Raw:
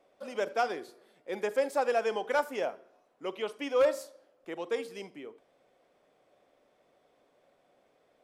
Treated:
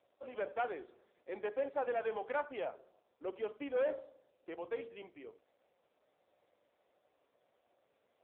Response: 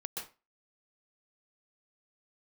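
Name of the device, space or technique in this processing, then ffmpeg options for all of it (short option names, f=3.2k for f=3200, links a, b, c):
telephone: -filter_complex "[0:a]asplit=3[a][b][c];[a]afade=t=out:st=2.74:d=0.02[d];[b]tiltshelf=f=820:g=3.5,afade=t=in:st=2.74:d=0.02,afade=t=out:st=4.5:d=0.02[e];[c]afade=t=in:st=4.5:d=0.02[f];[d][e][f]amix=inputs=3:normalize=0,highpass=280,lowpass=3.2k,asoftclip=type=tanh:threshold=-23dB,volume=-4dB" -ar 8000 -c:a libopencore_amrnb -b:a 5900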